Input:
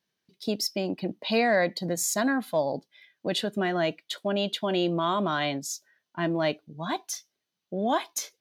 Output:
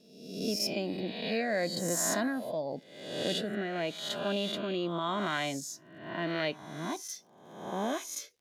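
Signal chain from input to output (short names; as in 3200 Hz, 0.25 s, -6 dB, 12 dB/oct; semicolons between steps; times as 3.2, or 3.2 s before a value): spectral swells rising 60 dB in 0.93 s; crackle 100/s -49 dBFS; rotary speaker horn 0.9 Hz; gain -5 dB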